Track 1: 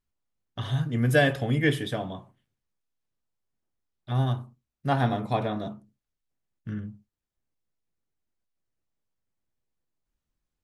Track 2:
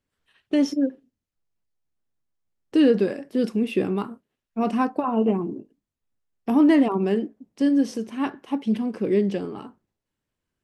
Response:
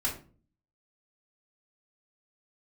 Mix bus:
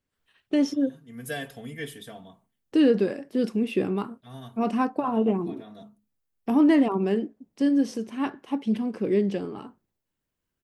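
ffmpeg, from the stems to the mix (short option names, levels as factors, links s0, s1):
-filter_complex "[0:a]aemphasis=mode=production:type=50fm,aecho=1:1:4.4:0.57,adelay=150,volume=0.224[s0];[1:a]volume=0.794,asplit=2[s1][s2];[s2]apad=whole_len=475733[s3];[s0][s3]sidechaincompress=threshold=0.02:ratio=8:attack=20:release=431[s4];[s4][s1]amix=inputs=2:normalize=0"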